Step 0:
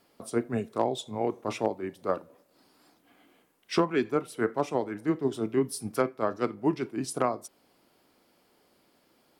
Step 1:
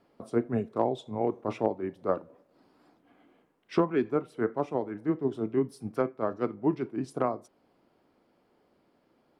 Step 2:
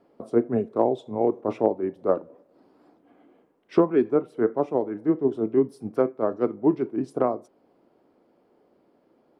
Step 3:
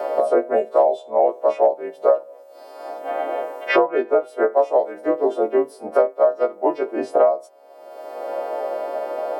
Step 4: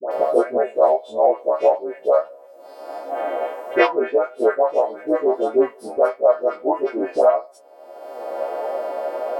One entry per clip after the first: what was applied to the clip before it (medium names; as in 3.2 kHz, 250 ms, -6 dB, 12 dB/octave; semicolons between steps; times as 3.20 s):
low-pass 1.1 kHz 6 dB/octave; gain riding 2 s
peaking EQ 420 Hz +10.5 dB 2.7 oct; trim -3.5 dB
partials quantised in pitch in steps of 2 st; resonant high-pass 610 Hz, resonance Q 4.9; three bands compressed up and down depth 100%; trim +1.5 dB
phase dispersion highs, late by 113 ms, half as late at 1 kHz; flange 1.6 Hz, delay 7.1 ms, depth 5.9 ms, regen +44%; trim +4 dB